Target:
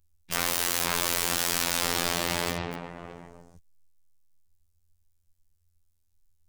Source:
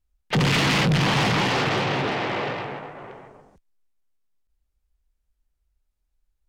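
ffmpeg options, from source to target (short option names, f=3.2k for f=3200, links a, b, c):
-af "bass=f=250:g=10,treble=f=4k:g=13,aeval=exprs='(mod(8.41*val(0)+1,2)-1)/8.41':c=same,afftfilt=real='hypot(re,im)*cos(PI*b)':imag='0':win_size=2048:overlap=0.75,volume=-1dB"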